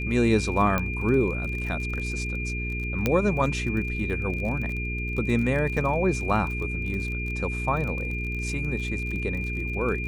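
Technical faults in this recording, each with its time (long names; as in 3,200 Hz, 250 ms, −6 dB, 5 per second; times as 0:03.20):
surface crackle 34 per second −32 dBFS
mains hum 60 Hz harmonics 7 −31 dBFS
whistle 2,400 Hz −32 dBFS
0:00.78: click −12 dBFS
0:03.06: click −9 dBFS
0:05.77: drop-out 2.6 ms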